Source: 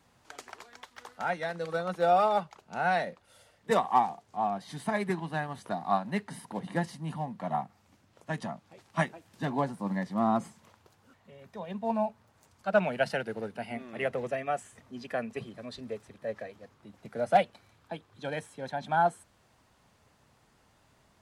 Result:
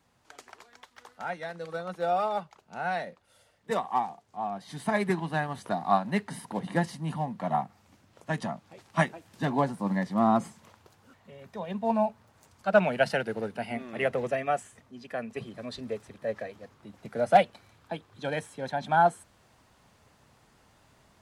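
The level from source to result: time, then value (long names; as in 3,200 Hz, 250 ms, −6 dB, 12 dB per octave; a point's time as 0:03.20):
0:04.45 −3.5 dB
0:04.96 +3.5 dB
0:14.54 +3.5 dB
0:14.97 −4 dB
0:15.61 +3.5 dB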